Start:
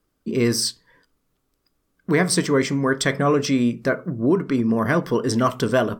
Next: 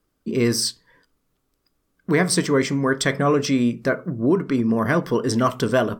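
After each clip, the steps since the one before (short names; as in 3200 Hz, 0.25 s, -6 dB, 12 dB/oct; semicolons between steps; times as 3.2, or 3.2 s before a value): nothing audible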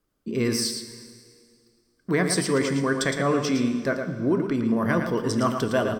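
echo 0.112 s -7 dB; plate-style reverb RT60 2.2 s, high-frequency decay 0.9×, DRR 10 dB; gain -4.5 dB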